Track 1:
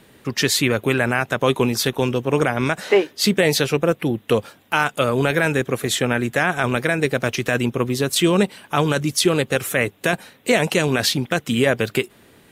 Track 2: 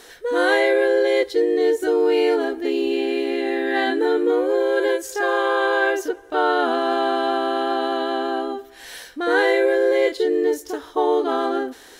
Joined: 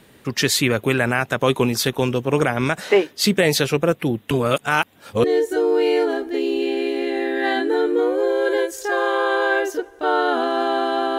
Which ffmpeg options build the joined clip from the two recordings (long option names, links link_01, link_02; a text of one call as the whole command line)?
ffmpeg -i cue0.wav -i cue1.wav -filter_complex "[0:a]apad=whole_dur=11.18,atrim=end=11.18,asplit=2[link_01][link_02];[link_01]atrim=end=4.312[link_03];[link_02]atrim=start=4.308:end=5.242,asetpts=PTS-STARTPTS,areverse[link_04];[1:a]atrim=start=1.548:end=7.49[link_05];[link_03][link_04]acrossfade=duration=0.004:curve1=hsin:curve2=hsin[link_06];[link_06][link_05]acrossfade=duration=0.004:curve1=hsin:curve2=hsin" out.wav